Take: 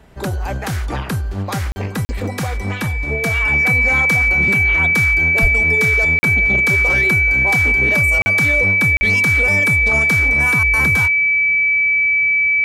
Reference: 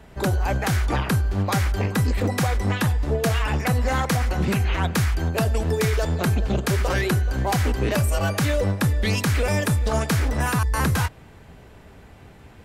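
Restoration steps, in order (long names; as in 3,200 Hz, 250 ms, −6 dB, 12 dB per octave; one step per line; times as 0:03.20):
notch filter 2,300 Hz, Q 30
0:05.41–0:05.53: high-pass filter 140 Hz 24 dB per octave
repair the gap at 0:01.72/0:02.05/0:06.19/0:08.22/0:08.97, 40 ms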